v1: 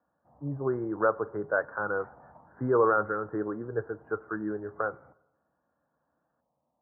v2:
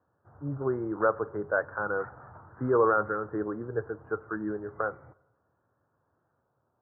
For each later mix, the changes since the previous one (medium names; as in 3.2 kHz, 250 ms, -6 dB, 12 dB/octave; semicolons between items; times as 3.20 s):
background: remove static phaser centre 390 Hz, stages 6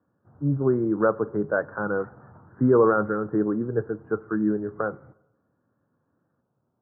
background -6.0 dB; master: add peaking EQ 200 Hz +14 dB 1.8 oct